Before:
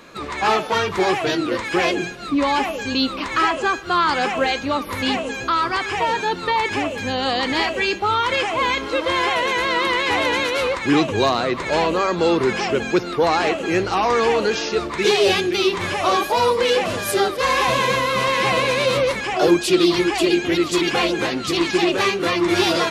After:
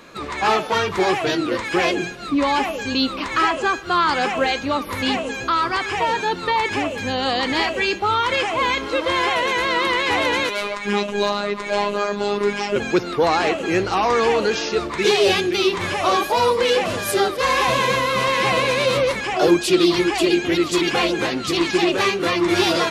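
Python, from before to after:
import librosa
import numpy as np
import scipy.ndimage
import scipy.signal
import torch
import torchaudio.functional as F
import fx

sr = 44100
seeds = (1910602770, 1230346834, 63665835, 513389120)

y = fx.robotise(x, sr, hz=204.0, at=(10.49, 12.76))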